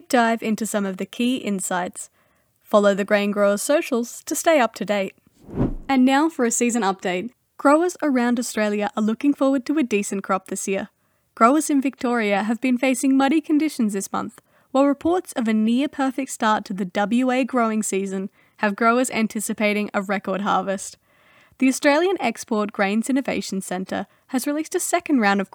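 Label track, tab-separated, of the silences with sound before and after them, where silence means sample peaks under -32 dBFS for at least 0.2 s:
2.050000	2.720000	silence
5.100000	5.490000	silence
7.270000	7.590000	silence
10.850000	11.370000	silence
14.380000	14.740000	silence
18.270000	18.610000	silence
20.930000	21.600000	silence
24.030000	24.310000	silence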